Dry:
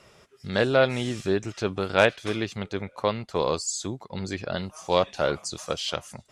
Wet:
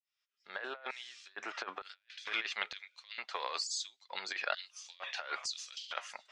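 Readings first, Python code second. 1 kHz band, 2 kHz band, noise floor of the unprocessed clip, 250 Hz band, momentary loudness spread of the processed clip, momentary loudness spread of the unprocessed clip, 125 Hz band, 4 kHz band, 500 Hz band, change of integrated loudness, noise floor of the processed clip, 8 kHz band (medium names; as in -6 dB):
-12.0 dB, -9.0 dB, -58 dBFS, -29.5 dB, 11 LU, 12 LU, under -40 dB, -7.0 dB, -24.0 dB, -13.0 dB, under -85 dBFS, -9.5 dB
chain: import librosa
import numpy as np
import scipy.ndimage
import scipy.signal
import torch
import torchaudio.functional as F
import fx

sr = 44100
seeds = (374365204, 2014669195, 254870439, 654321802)

p1 = fx.fade_in_head(x, sr, length_s=1.56)
p2 = fx.dynamic_eq(p1, sr, hz=1800.0, q=2.4, threshold_db=-46.0, ratio=4.0, max_db=5)
p3 = 10.0 ** (-18.0 / 20.0) * np.tanh(p2 / 10.0 ** (-18.0 / 20.0))
p4 = p2 + (p3 * 10.0 ** (-6.0 / 20.0))
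p5 = fx.filter_sweep_bandpass(p4, sr, from_hz=1300.0, to_hz=2600.0, start_s=1.7, end_s=2.55, q=0.81)
p6 = fx.over_compress(p5, sr, threshold_db=-34.0, ratio=-0.5)
p7 = scipy.signal.sosfilt(scipy.signal.butter(2, 110.0, 'highpass', fs=sr, output='sos'), p6)
p8 = fx.filter_lfo_highpass(p7, sr, shape='square', hz=1.1, low_hz=810.0, high_hz=4500.0, q=0.94)
p9 = scipy.signal.sosfilt(scipy.signal.butter(2, 5900.0, 'lowpass', fs=sr, output='sos'), p8)
p10 = fx.low_shelf(p9, sr, hz=460.0, db=9.0)
y = p10 * 10.0 ** (-4.0 / 20.0)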